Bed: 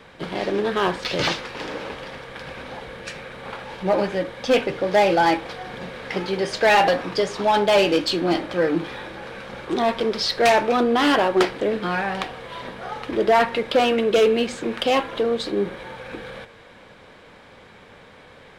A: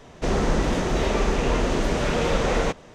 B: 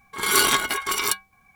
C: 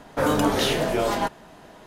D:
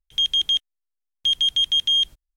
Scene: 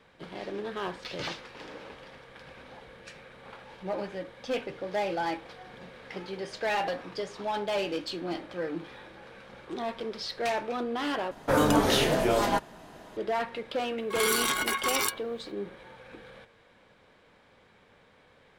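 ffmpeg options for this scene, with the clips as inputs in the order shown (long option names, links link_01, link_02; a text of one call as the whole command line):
ffmpeg -i bed.wav -i cue0.wav -i cue1.wav -i cue2.wav -filter_complex "[0:a]volume=-13dB[link_01];[2:a]acompressor=threshold=-21dB:ratio=6:attack=3.2:release=140:knee=1:detection=peak[link_02];[link_01]asplit=2[link_03][link_04];[link_03]atrim=end=11.314[link_05];[3:a]atrim=end=1.86,asetpts=PTS-STARTPTS,volume=-1.5dB[link_06];[link_04]atrim=start=13.166[link_07];[link_02]atrim=end=1.55,asetpts=PTS-STARTPTS,volume=-2dB,afade=type=in:duration=0.004:curve=hsin,afade=type=out:start_time=1.546:duration=0.004:curve=hsin,adelay=13970[link_08];[link_05][link_06]acrossfade=duration=0.004:curve1=hsin:curve2=hsin[link_09];[link_09][link_07]acrossfade=duration=0.004:curve1=hsin:curve2=hsin[link_10];[link_10][link_08]amix=inputs=2:normalize=0" out.wav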